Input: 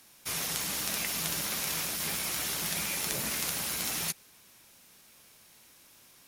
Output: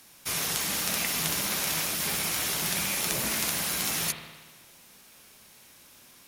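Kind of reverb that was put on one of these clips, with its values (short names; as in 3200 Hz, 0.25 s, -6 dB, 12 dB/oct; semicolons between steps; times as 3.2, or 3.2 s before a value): spring tank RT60 1.3 s, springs 56 ms, chirp 25 ms, DRR 5.5 dB; gain +3.5 dB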